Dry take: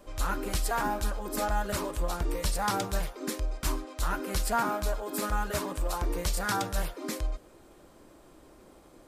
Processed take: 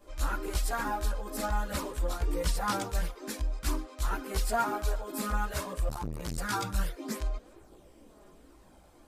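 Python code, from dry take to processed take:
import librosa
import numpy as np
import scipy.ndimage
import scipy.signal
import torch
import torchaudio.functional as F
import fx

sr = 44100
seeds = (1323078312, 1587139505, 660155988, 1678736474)

y = fx.chorus_voices(x, sr, voices=4, hz=0.5, base_ms=16, depth_ms=2.5, mix_pct=65)
y = fx.transformer_sat(y, sr, knee_hz=330.0, at=(5.89, 6.38))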